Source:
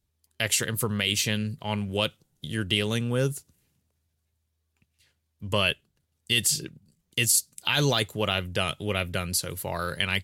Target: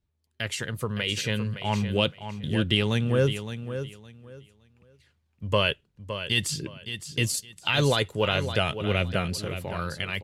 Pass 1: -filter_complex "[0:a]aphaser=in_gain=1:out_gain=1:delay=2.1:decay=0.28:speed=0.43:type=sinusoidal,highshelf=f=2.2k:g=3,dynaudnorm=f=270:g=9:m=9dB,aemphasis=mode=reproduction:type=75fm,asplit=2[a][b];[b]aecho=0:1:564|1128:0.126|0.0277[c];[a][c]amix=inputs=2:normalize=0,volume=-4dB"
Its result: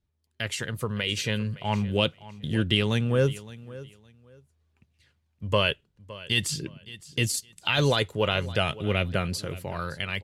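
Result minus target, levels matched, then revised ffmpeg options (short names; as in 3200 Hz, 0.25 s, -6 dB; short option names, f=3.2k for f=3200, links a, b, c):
echo-to-direct -8 dB
-filter_complex "[0:a]aphaser=in_gain=1:out_gain=1:delay=2.1:decay=0.28:speed=0.43:type=sinusoidal,highshelf=f=2.2k:g=3,dynaudnorm=f=270:g=9:m=9dB,aemphasis=mode=reproduction:type=75fm,asplit=2[a][b];[b]aecho=0:1:564|1128|1692:0.316|0.0696|0.0153[c];[a][c]amix=inputs=2:normalize=0,volume=-4dB"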